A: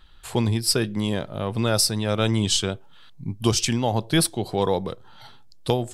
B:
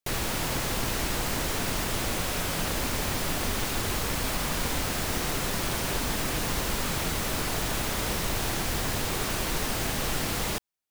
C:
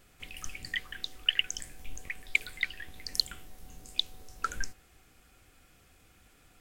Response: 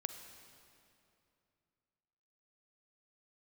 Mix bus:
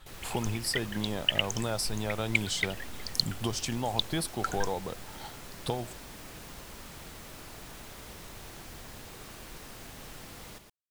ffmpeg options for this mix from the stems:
-filter_complex "[0:a]equalizer=frequency=810:width_type=o:width=0.77:gain=6.5,acompressor=threshold=-30dB:ratio=3,volume=-2dB[link_01];[1:a]volume=-17.5dB,asplit=2[link_02][link_03];[link_03]volume=-8dB[link_04];[2:a]volume=0dB[link_05];[link_04]aecho=0:1:115:1[link_06];[link_01][link_02][link_05][link_06]amix=inputs=4:normalize=0"

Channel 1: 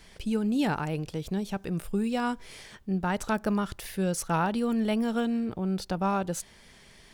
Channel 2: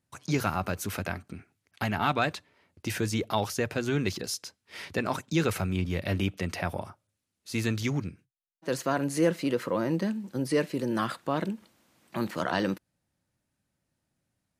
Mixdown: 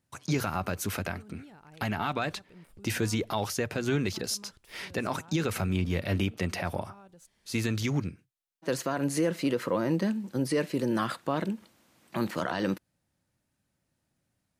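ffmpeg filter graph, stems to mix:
ffmpeg -i stem1.wav -i stem2.wav -filter_complex "[0:a]alimiter=level_in=2dB:limit=-24dB:level=0:latency=1:release=164,volume=-2dB,adelay=850,volume=-17.5dB[link_01];[1:a]volume=1.5dB[link_02];[link_01][link_02]amix=inputs=2:normalize=0,alimiter=limit=-17.5dB:level=0:latency=1:release=89" out.wav

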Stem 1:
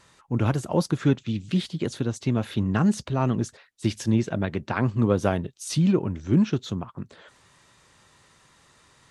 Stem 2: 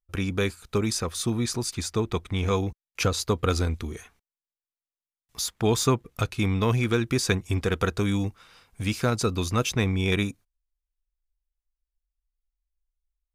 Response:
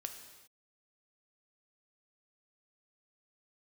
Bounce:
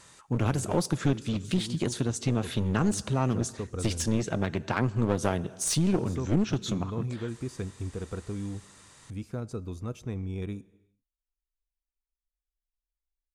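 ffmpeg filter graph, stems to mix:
-filter_complex "[0:a]volume=-1dB,asplit=2[link_01][link_02];[link_02]volume=-9dB[link_03];[1:a]tiltshelf=frequency=1200:gain=9.5,adelay=300,volume=-20dB,asplit=2[link_04][link_05];[link_05]volume=-10dB[link_06];[2:a]atrim=start_sample=2205[link_07];[link_03][link_06]amix=inputs=2:normalize=0[link_08];[link_08][link_07]afir=irnorm=-1:irlink=0[link_09];[link_01][link_04][link_09]amix=inputs=3:normalize=0,equalizer=frequency=8500:width=0.98:gain=8.5,aeval=exprs='clip(val(0),-1,0.0668)':channel_layout=same,acompressor=threshold=-27dB:ratio=1.5"

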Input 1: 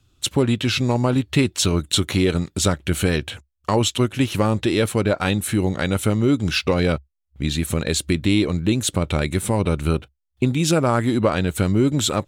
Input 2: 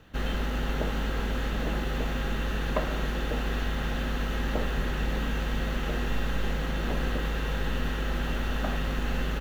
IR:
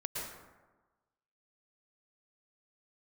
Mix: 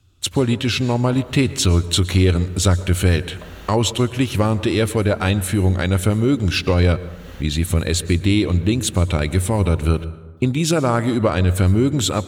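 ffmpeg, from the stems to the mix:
-filter_complex "[0:a]equalizer=frequency=90:width=6.3:gain=10.5,volume=-0.5dB,asplit=3[link_01][link_02][link_03];[link_02]volume=-15dB[link_04];[1:a]highshelf=frequency=3700:gain=10,adelay=650,volume=-9dB[link_05];[link_03]apad=whole_len=443265[link_06];[link_05][link_06]sidechaincompress=threshold=-28dB:ratio=12:attack=16:release=331[link_07];[2:a]atrim=start_sample=2205[link_08];[link_04][link_08]afir=irnorm=-1:irlink=0[link_09];[link_01][link_07][link_09]amix=inputs=3:normalize=0"

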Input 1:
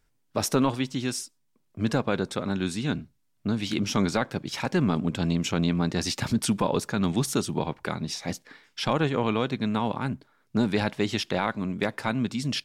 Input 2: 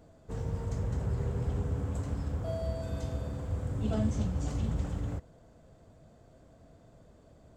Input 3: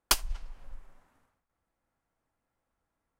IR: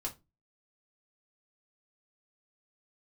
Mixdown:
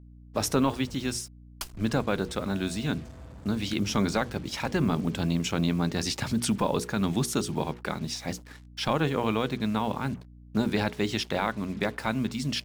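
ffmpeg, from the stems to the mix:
-filter_complex "[0:a]volume=-1dB[link_01];[1:a]volume=30dB,asoftclip=hard,volume=-30dB,adelay=50,volume=-10.5dB,asplit=3[link_02][link_03][link_04];[link_02]atrim=end=1.17,asetpts=PTS-STARTPTS,afade=type=out:start_time=1.166:duration=0.004:curve=hsin[link_05];[link_03]atrim=start=1.17:end=1.92,asetpts=PTS-STARTPTS,volume=0[link_06];[link_04]atrim=start=1.92,asetpts=PTS-STARTPTS,afade=type=in:duration=0.004:curve=hsin[link_07];[link_05][link_06][link_07]concat=n=3:v=0:a=1[link_08];[2:a]adelay=1500,volume=-12.5dB[link_09];[link_01][link_08][link_09]amix=inputs=3:normalize=0,bandreject=frequency=60:width_type=h:width=6,bandreject=frequency=120:width_type=h:width=6,bandreject=frequency=180:width_type=h:width=6,bandreject=frequency=240:width_type=h:width=6,bandreject=frequency=300:width_type=h:width=6,bandreject=frequency=360:width_type=h:width=6,bandreject=frequency=420:width_type=h:width=6,bandreject=frequency=480:width_type=h:width=6,acrusher=bits=7:mix=0:aa=0.5,aeval=exprs='val(0)+0.00398*(sin(2*PI*60*n/s)+sin(2*PI*2*60*n/s)/2+sin(2*PI*3*60*n/s)/3+sin(2*PI*4*60*n/s)/4+sin(2*PI*5*60*n/s)/5)':channel_layout=same"

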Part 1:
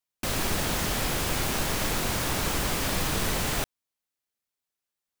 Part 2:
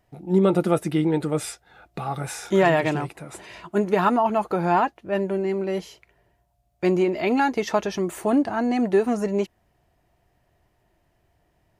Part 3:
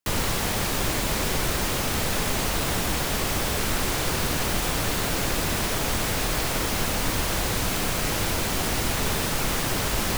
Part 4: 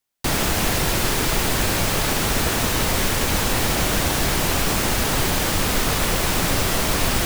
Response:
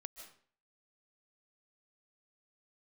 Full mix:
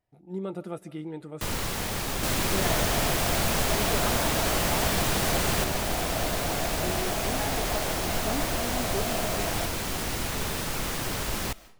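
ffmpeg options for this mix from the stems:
-filter_complex "[0:a]adelay=2000,volume=-0.5dB[link_01];[1:a]volume=-17.5dB,asplit=2[link_02][link_03];[link_03]volume=-5dB[link_04];[2:a]adelay=1350,volume=-7dB,asplit=2[link_05][link_06];[link_06]volume=-6.5dB[link_07];[3:a]equalizer=frequency=670:width=2.6:gain=15,adelay=2400,volume=-15dB[link_08];[4:a]atrim=start_sample=2205[link_09];[link_04][link_07]amix=inputs=2:normalize=0[link_10];[link_10][link_09]afir=irnorm=-1:irlink=0[link_11];[link_01][link_02][link_05][link_08][link_11]amix=inputs=5:normalize=0"

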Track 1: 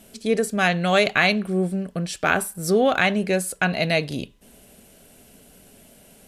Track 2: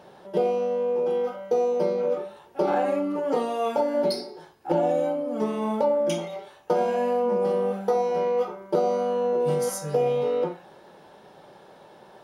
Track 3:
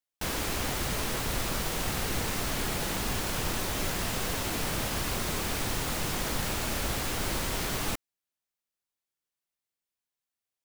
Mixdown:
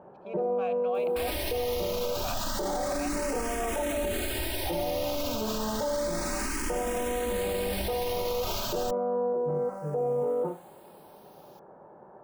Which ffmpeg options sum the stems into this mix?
ffmpeg -i stem1.wav -i stem2.wav -i stem3.wav -filter_complex "[0:a]adynamicsmooth=sensitivity=2.5:basefreq=2300,asplit=3[link_01][link_02][link_03];[link_01]bandpass=frequency=730:width_type=q:width=8,volume=0dB[link_04];[link_02]bandpass=frequency=1090:width_type=q:width=8,volume=-6dB[link_05];[link_03]bandpass=frequency=2440:width_type=q:width=8,volume=-9dB[link_06];[link_04][link_05][link_06]amix=inputs=3:normalize=0,volume=-6dB[link_07];[1:a]lowpass=frequency=1300:width=0.5412,lowpass=frequency=1300:width=1.3066,volume=-1dB[link_08];[2:a]aecho=1:1:3.2:0.92,acompressor=mode=upward:threshold=-39dB:ratio=2.5,asplit=2[link_09][link_10];[link_10]afreqshift=0.31[link_11];[link_09][link_11]amix=inputs=2:normalize=1,adelay=950,volume=1dB[link_12];[link_07][link_08][link_12]amix=inputs=3:normalize=0,alimiter=limit=-22dB:level=0:latency=1:release=19" out.wav

